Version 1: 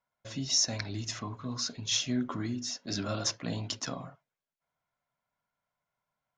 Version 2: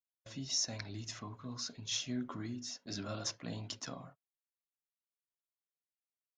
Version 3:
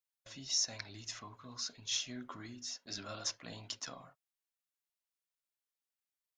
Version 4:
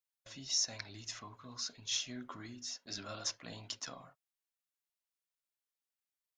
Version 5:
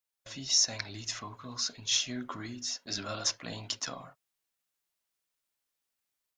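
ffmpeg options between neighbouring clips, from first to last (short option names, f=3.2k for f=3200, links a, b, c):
-af "agate=range=-26dB:threshold=-47dB:ratio=16:detection=peak,volume=-7.5dB"
-af "equalizer=f=160:w=0.32:g=-10.5,volume=1.5dB"
-af anull
-af "dynaudnorm=f=150:g=3:m=5dB,volume=2.5dB"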